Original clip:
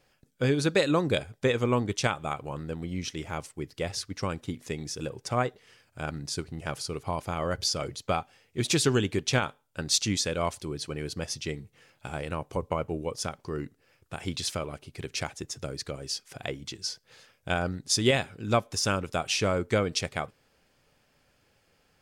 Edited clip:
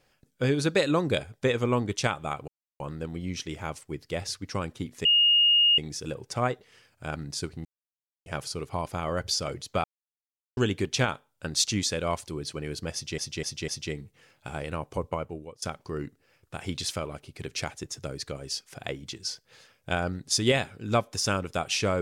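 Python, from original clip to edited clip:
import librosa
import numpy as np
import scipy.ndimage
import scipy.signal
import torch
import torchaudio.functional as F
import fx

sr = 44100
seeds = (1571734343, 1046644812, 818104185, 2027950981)

y = fx.edit(x, sr, fx.insert_silence(at_s=2.48, length_s=0.32),
    fx.insert_tone(at_s=4.73, length_s=0.73, hz=2850.0, db=-17.0),
    fx.insert_silence(at_s=6.6, length_s=0.61),
    fx.silence(start_s=8.18, length_s=0.73),
    fx.repeat(start_s=11.27, length_s=0.25, count=4),
    fx.fade_out_to(start_s=12.63, length_s=0.58, floor_db=-21.0), tone=tone)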